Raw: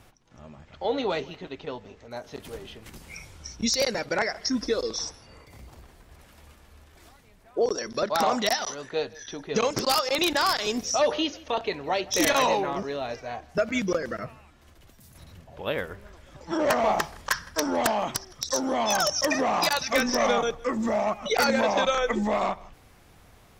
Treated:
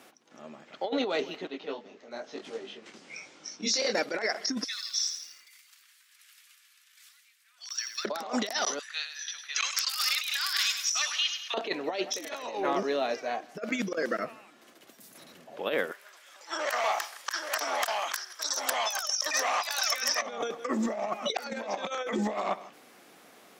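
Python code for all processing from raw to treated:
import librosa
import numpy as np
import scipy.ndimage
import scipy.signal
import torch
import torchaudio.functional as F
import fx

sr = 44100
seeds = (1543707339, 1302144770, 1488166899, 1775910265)

y = fx.chain(x, sr, fx.lowpass(hz=6900.0, slope=24),
    fx.detune_double(cents=35), at=(1.47, 3.95))
y = fx.chain(y, sr, fx.bessel_highpass(hz=2400.0, order=8),
    fx.echo_crushed(ms=83, feedback_pct=55, bits=9, wet_db=-7), at=(4.64, 8.05))
y = fx.chain(y, sr, fx.highpass(hz=1500.0, slope=24),
    fx.high_shelf(hz=8800.0, db=5.5),
    fx.echo_feedback(ms=102, feedback_pct=49, wet_db=-10.0), at=(8.79, 11.54))
y = fx.chain(y, sr, fx.highpass(hz=1100.0, slope=12),
    fx.high_shelf(hz=7800.0, db=6.0),
    fx.echo_single(ms=831, db=-7.0), at=(15.91, 20.22))
y = scipy.signal.sosfilt(scipy.signal.butter(4, 230.0, 'highpass', fs=sr, output='sos'), y)
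y = fx.peak_eq(y, sr, hz=940.0, db=-4.0, octaves=0.28)
y = fx.over_compress(y, sr, threshold_db=-29.0, ratio=-0.5)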